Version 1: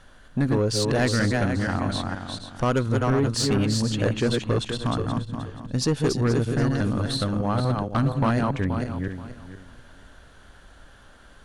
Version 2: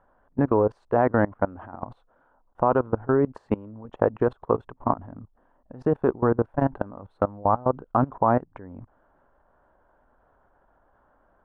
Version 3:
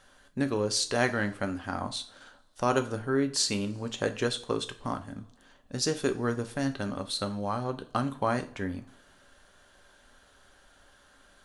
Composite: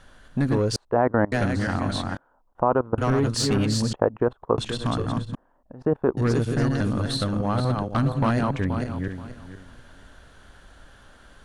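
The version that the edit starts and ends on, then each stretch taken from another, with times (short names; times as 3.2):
1
0.76–1.32 from 2
2.17–2.98 from 2
3.93–4.58 from 2
5.35–6.17 from 2
not used: 3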